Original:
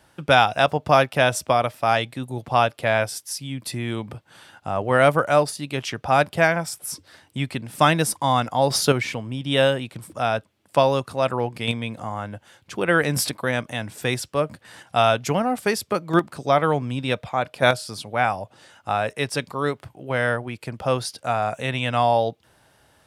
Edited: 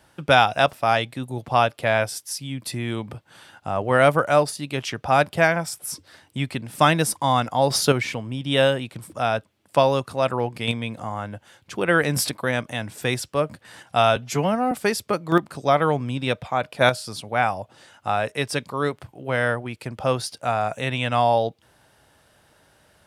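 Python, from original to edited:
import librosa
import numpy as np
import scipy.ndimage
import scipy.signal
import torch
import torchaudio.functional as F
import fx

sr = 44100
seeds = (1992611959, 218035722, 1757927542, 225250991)

y = fx.edit(x, sr, fx.cut(start_s=0.73, length_s=1.0),
    fx.stretch_span(start_s=15.16, length_s=0.37, factor=1.5), tone=tone)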